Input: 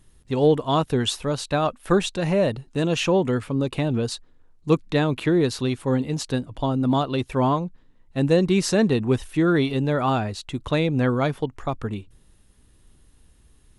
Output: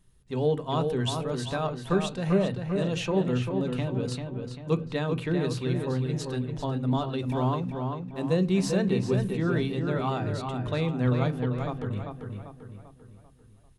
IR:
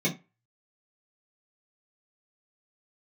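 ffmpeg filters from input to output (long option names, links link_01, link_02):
-filter_complex "[0:a]asplit=2[link_01][link_02];[1:a]atrim=start_sample=2205,asetrate=30870,aresample=44100[link_03];[link_02][link_03]afir=irnorm=-1:irlink=0,volume=-21.5dB[link_04];[link_01][link_04]amix=inputs=2:normalize=0,asettb=1/sr,asplit=3[link_05][link_06][link_07];[link_05]atrim=end=7.264[link_08];[link_06]atrim=start=7.26:end=8.88,asetpts=PTS-STARTPTS,afade=type=in:duration=0.004:curve=qsin,afade=type=out:start_time=1.616:duration=0.004:curve=qsin,aeval=exprs='sgn(val(0))*max(abs(val(0))-0.00335,0)':channel_layout=same[link_09];[link_07]atrim=start=8.876[link_10];[link_08][link_09]acrossfade=duration=0.004:curve1=hsin:curve2=qsin[link_11];[link_11][link_10]acrossfade=duration=0.004:curve1=qsin:curve2=hsin,asplit=2[link_12][link_13];[link_13]adelay=393,lowpass=frequency=3600:poles=1,volume=-5dB,asplit=2[link_14][link_15];[link_15]adelay=393,lowpass=frequency=3600:poles=1,volume=0.46,asplit=2[link_16][link_17];[link_17]adelay=393,lowpass=frequency=3600:poles=1,volume=0.46,asplit=2[link_18][link_19];[link_19]adelay=393,lowpass=frequency=3600:poles=1,volume=0.46,asplit=2[link_20][link_21];[link_21]adelay=393,lowpass=frequency=3600:poles=1,volume=0.46,asplit=2[link_22][link_23];[link_23]adelay=393,lowpass=frequency=3600:poles=1,volume=0.46[link_24];[link_12][link_14][link_16][link_18][link_20][link_22][link_24]amix=inputs=7:normalize=0,volume=-8dB"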